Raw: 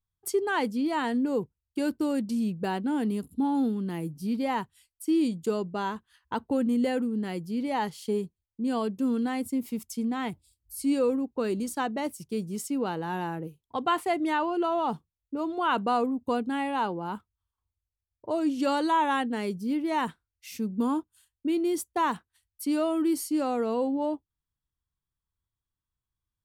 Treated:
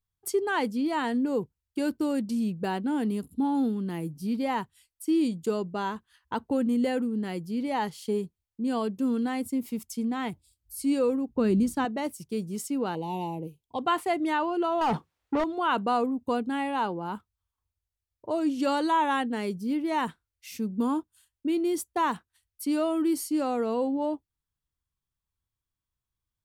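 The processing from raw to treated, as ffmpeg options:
ffmpeg -i in.wav -filter_complex "[0:a]asettb=1/sr,asplit=3[link_01][link_02][link_03];[link_01]atrim=end=11.294[link_04];[link_02]atrim=start=11.29:end=11.85,asetpts=PTS-STARTPTS,afade=type=in:duration=0.004:curve=qsin,afade=type=out:start_time=0.556:duration=0.004:curve=qsin,bass=frequency=250:gain=14,treble=frequency=4000:gain=-3[link_05];[link_03]atrim=start=11.846[link_06];[link_04][link_05]acrossfade=duration=0.004:curve1=hsin:curve2=qsin[link_07];[link_07][link_06]acrossfade=duration=0.004:curve1=qsin:curve2=hsin,asettb=1/sr,asplit=3[link_08][link_09][link_10];[link_08]atrim=end=12.954[link_11];[link_09]atrim=start=12.95:end=13.79,asetpts=PTS-STARTPTS,afade=type=in:duration=0.004:curve=qsin,afade=type=out:start_time=0.836:duration=0.004:curve=qsin,asuperstop=centerf=1500:order=8:qfactor=1.3[link_12];[link_10]atrim=start=13.786[link_13];[link_11][link_12]acrossfade=duration=0.004:curve1=hsin:curve2=qsin[link_14];[link_14][link_13]acrossfade=duration=0.004:curve1=qsin:curve2=hsin,asettb=1/sr,asplit=3[link_15][link_16][link_17];[link_15]atrim=end=14.814[link_18];[link_16]atrim=start=14.81:end=15.44,asetpts=PTS-STARTPTS,afade=type=in:duration=0.004:curve=qsin,afade=type=out:start_time=0.626:duration=0.004:curve=qsin,asplit=2[link_19][link_20];[link_20]highpass=frequency=720:poles=1,volume=30dB,asoftclip=type=tanh:threshold=-17.5dB[link_21];[link_19][link_21]amix=inputs=2:normalize=0,lowpass=frequency=1200:poles=1,volume=-6dB[link_22];[link_17]atrim=start=15.436[link_23];[link_18][link_22]acrossfade=duration=0.004:curve1=hsin:curve2=qsin[link_24];[link_24][link_23]acrossfade=duration=0.004:curve1=qsin:curve2=hsin" out.wav

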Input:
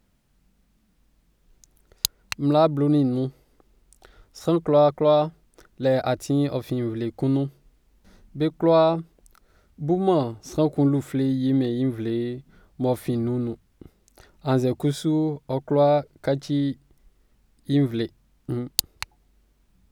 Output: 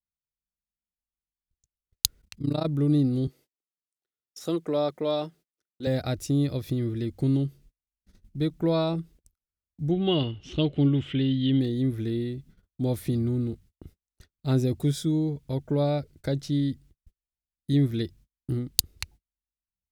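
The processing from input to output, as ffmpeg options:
ffmpeg -i in.wav -filter_complex "[0:a]asplit=3[link_01][link_02][link_03];[link_01]afade=type=out:start_time=2.19:duration=0.02[link_04];[link_02]tremolo=f=29:d=0.919,afade=type=in:start_time=2.19:duration=0.02,afade=type=out:start_time=2.65:duration=0.02[link_05];[link_03]afade=type=in:start_time=2.65:duration=0.02[link_06];[link_04][link_05][link_06]amix=inputs=3:normalize=0,asettb=1/sr,asplit=3[link_07][link_08][link_09];[link_07]atrim=end=3.274[link_10];[link_08]atrim=start=3.27:end=5.87,asetpts=PTS-STARTPTS,afade=type=in:duration=0.004:curve=qsin,afade=type=out:start_time=2.596:duration=0.004:curve=qsin,highpass=270[link_11];[link_09]atrim=start=5.866[link_12];[link_10][link_11]acrossfade=duration=0.004:curve1=hsin:curve2=qsin[link_13];[link_13][link_12]acrossfade=duration=0.004:curve1=qsin:curve2=hsin,asettb=1/sr,asplit=3[link_14][link_15][link_16];[link_14]atrim=end=9.914[link_17];[link_15]atrim=start=9.91:end=11.6,asetpts=PTS-STARTPTS,afade=type=in:duration=0.004:curve=qsin,afade=type=out:start_time=1.686:duration=0.004:curve=qsin,lowpass=frequency=3000:width_type=q:width=14[link_18];[link_16]atrim=start=11.596[link_19];[link_17][link_18]acrossfade=duration=0.004:curve1=hsin:curve2=qsin[link_20];[link_20][link_19]acrossfade=duration=0.004:curve1=qsin:curve2=hsin,equalizer=frequency=860:width_type=o:width=2.1:gain=-12,agate=range=-38dB:threshold=-51dB:ratio=16:detection=peak,equalizer=frequency=76:width_type=o:width=1.1:gain=6" out.wav

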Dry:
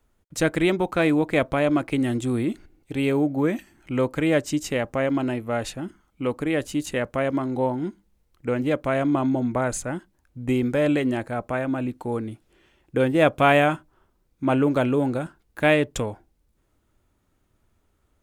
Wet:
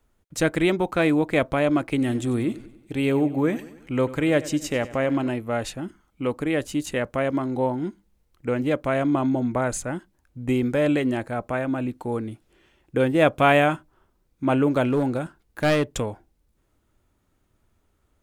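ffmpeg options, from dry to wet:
ffmpeg -i in.wav -filter_complex "[0:a]asettb=1/sr,asplit=3[link_01][link_02][link_03];[link_01]atrim=end=1.894[link_04];[link_02]atrim=start=1.89:end=5.29,asetpts=PTS-STARTPTS,afade=type=in:duration=0.004:curve=qsin,afade=type=out:start_time=3.396:duration=0.004:curve=qsin,aecho=1:1:95|190|285|380|475:0.141|0.0735|0.0382|0.0199|0.0103,atrim=end_sample=149940[link_05];[link_03]atrim=start=5.286[link_06];[link_04][link_05]acrossfade=duration=0.004:curve1=hsin:curve2=qsin[link_07];[link_07][link_06]acrossfade=duration=0.004:curve1=qsin:curve2=hsin,asettb=1/sr,asplit=3[link_08][link_09][link_10];[link_08]atrim=end=14.864[link_11];[link_09]atrim=start=14.86:end=15.86,asetpts=PTS-STARTPTS,afade=type=in:duration=0.004:curve=qsin,afade=type=out:start_time=0.996:duration=0.004:curve=qsin,aeval=exprs='clip(val(0),-1,0.119)':channel_layout=same[link_12];[link_10]atrim=start=15.856[link_13];[link_11][link_12]acrossfade=duration=0.004:curve1=hsin:curve2=qsin[link_14];[link_14][link_13]acrossfade=duration=0.004:curve1=qsin:curve2=hsin" out.wav

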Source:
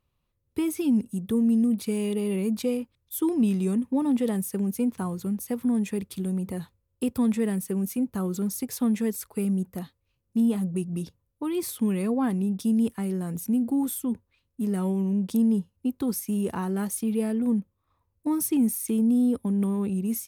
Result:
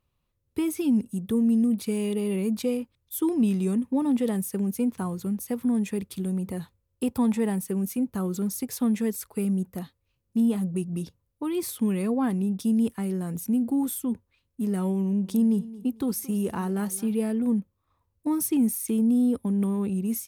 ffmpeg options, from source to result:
ffmpeg -i in.wav -filter_complex "[0:a]asettb=1/sr,asplit=3[link_01][link_02][link_03];[link_01]atrim=end=7.044[link_04];[link_02]atrim=start=7.04:end=7.62,asetpts=PTS-STARTPTS,afade=type=in:duration=0.004:curve=qsin,afade=type=out:start_time=0.576:duration=0.004:curve=qsin,equalizer=frequency=860:width=3.8:gain=10[link_05];[link_03]atrim=start=7.616[link_06];[link_04][link_05]acrossfade=duration=0.004:curve1=hsin:curve2=qsin[link_07];[link_07][link_06]acrossfade=duration=0.004:curve1=qsin:curve2=hsin,asettb=1/sr,asplit=3[link_08][link_09][link_10];[link_08]atrim=end=15.024[link_11];[link_09]atrim=start=15.02:end=17.12,asetpts=PTS-STARTPTS,afade=type=in:duration=0.004:curve=qsin,afade=type=out:start_time=2.096:duration=0.004:curve=qsin,aecho=1:1:224|448|672:0.126|0.0378|0.0113,atrim=end_sample=92610[link_12];[link_10]atrim=start=17.116[link_13];[link_11][link_12]acrossfade=duration=0.004:curve1=hsin:curve2=qsin[link_14];[link_14][link_13]acrossfade=duration=0.004:curve1=qsin:curve2=hsin" out.wav

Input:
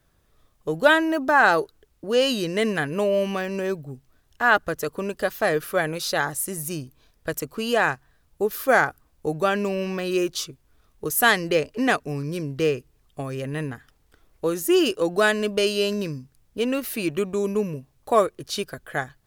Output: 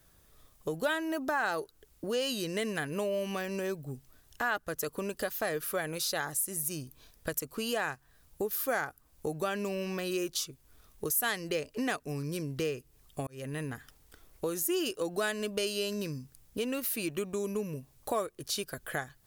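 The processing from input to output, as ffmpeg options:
ffmpeg -i in.wav -filter_complex "[0:a]asplit=2[link_01][link_02];[link_01]atrim=end=13.27,asetpts=PTS-STARTPTS,afade=type=out:start_time=13.266:duration=0.004:curve=hsin[link_03];[link_02]atrim=start=13.27,asetpts=PTS-STARTPTS,afade=type=in:duration=0.46[link_04];[link_03][link_04]concat=n=2:v=0:a=1,highshelf=frequency=5500:gain=10.5,acompressor=threshold=-35dB:ratio=2.5" out.wav

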